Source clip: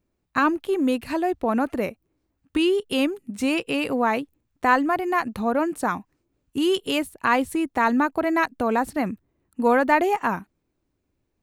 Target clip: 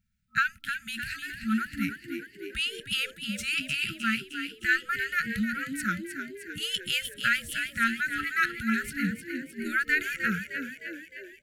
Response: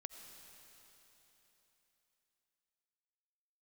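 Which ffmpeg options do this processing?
-filter_complex "[0:a]afftfilt=real='re*(1-between(b*sr/4096,230,1300))':imag='im*(1-between(b*sr/4096,230,1300))':win_size=4096:overlap=0.75,asplit=2[link_01][link_02];[link_02]asplit=7[link_03][link_04][link_05][link_06][link_07][link_08][link_09];[link_03]adelay=307,afreqshift=59,volume=-8dB[link_10];[link_04]adelay=614,afreqshift=118,volume=-12.6dB[link_11];[link_05]adelay=921,afreqshift=177,volume=-17.2dB[link_12];[link_06]adelay=1228,afreqshift=236,volume=-21.7dB[link_13];[link_07]adelay=1535,afreqshift=295,volume=-26.3dB[link_14];[link_08]adelay=1842,afreqshift=354,volume=-30.9dB[link_15];[link_09]adelay=2149,afreqshift=413,volume=-35.5dB[link_16];[link_10][link_11][link_12][link_13][link_14][link_15][link_16]amix=inputs=7:normalize=0[link_17];[link_01][link_17]amix=inputs=2:normalize=0,adynamicequalizer=threshold=0.00501:dfrequency=530:dqfactor=0.82:tfrequency=530:tqfactor=0.82:attack=5:release=100:ratio=0.375:range=1.5:mode=boostabove:tftype=bell"

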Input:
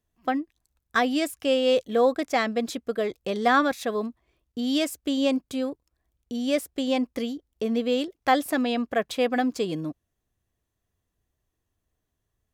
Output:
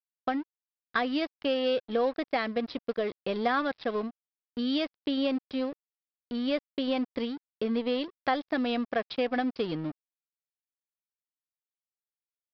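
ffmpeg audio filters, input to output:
ffmpeg -i in.wav -af "acompressor=threshold=-25dB:ratio=2.5,aresample=11025,aeval=exprs='sgn(val(0))*max(abs(val(0))-0.00794,0)':channel_layout=same,aresample=44100" out.wav

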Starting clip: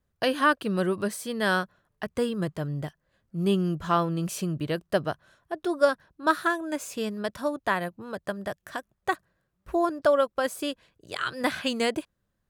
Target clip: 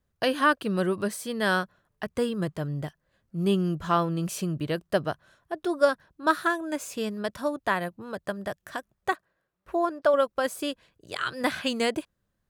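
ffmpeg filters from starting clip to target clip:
ffmpeg -i in.wav -filter_complex "[0:a]asettb=1/sr,asplit=3[link_01][link_02][link_03];[link_01]atrim=end=9.124[link_04];[link_02]atrim=start=9.12:end=10.14,asetpts=PTS-STARTPTS,afade=type=in:duration=0.004:curve=qsin,afade=type=out:start_time=1.016:duration=0.004:curve=qsin,bass=frequency=250:gain=-11,treble=frequency=4000:gain=-6[link_05];[link_03]atrim=start=10.136[link_06];[link_04][link_05]acrossfade=duration=0.004:curve1=hsin:curve2=qsin[link_07];[link_07][link_06]acrossfade=duration=0.004:curve1=qsin:curve2=hsin" out.wav

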